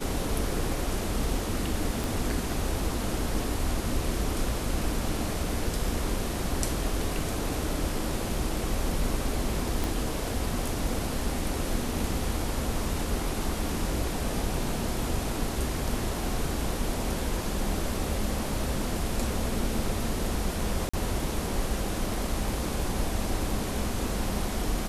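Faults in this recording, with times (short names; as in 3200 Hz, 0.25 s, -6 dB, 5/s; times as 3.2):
2.04 pop
9.84 pop
20.89–20.93 gap 45 ms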